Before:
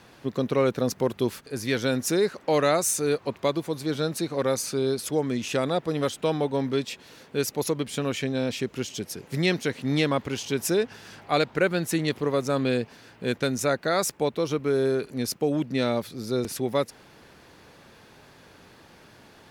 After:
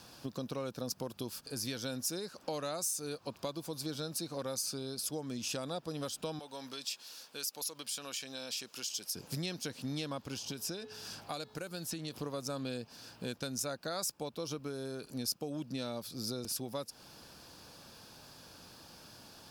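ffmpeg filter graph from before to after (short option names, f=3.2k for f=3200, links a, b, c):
-filter_complex "[0:a]asettb=1/sr,asplit=3[a][b][c];[a]atrim=end=6.394[d];[b]atrim=start=6.39:end=9.15,asetpts=PTS-STARTPTS,afade=t=in:d=0.004:c=qsin,afade=t=out:st=2.756:d=0.004:c=qsin,highpass=f=1.3k:p=1,acompressor=threshold=-36dB:ratio=2:attack=3.2:release=140:knee=1:detection=peak[e];[c]atrim=start=9.146[f];[d][e]acrossfade=d=0.004:c1=hsin:c2=qsin[g];[g][f]acrossfade=d=0.004:c1=qsin:c2=hsin,asettb=1/sr,asplit=3[h][i][j];[h]atrim=end=10.374[k];[i]atrim=start=10.37:end=12.14,asetpts=PTS-STARTPTS,afade=t=in:d=0.004:c=qsin,afade=t=out:st=1.766:d=0.004:c=qsin,bandreject=f=428.6:t=h:w=4,bandreject=f=857.2:t=h:w=4,bandreject=f=1.2858k:t=h:w=4,bandreject=f=1.7144k:t=h:w=4,bandreject=f=2.143k:t=h:w=4,bandreject=f=2.5716k:t=h:w=4,bandreject=f=3.0002k:t=h:w=4,bandreject=f=3.4288k:t=h:w=4,bandreject=f=3.8574k:t=h:w=4,bandreject=f=4.286k:t=h:w=4,acrossover=split=1400|5600[l][m][n];[l]acompressor=threshold=-33dB:ratio=4[o];[m]acompressor=threshold=-43dB:ratio=4[p];[n]acompressor=threshold=-49dB:ratio=4[q];[o][p][q]amix=inputs=3:normalize=0[r];[j]atrim=start=12.136[s];[k][r]acrossfade=d=0.004:c1=hsin:c2=qsin[t];[t][s]acrossfade=d=0.004:c1=qsin:c2=hsin,highshelf=f=5.8k:g=11,acompressor=threshold=-32dB:ratio=4,equalizer=f=400:t=o:w=0.33:g=-6,equalizer=f=2k:t=o:w=0.33:g=-11,equalizer=f=5k:t=o:w=0.33:g=8,volume=-4dB"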